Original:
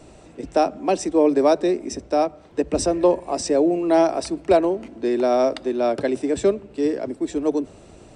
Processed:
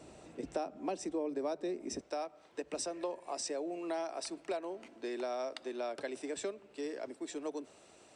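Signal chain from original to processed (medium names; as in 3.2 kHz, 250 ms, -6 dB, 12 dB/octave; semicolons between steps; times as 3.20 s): high-pass 130 Hz 6 dB/octave, from 2.01 s 1 kHz; compression 4:1, threshold -29 dBFS, peak gain reduction 14 dB; trim -6.5 dB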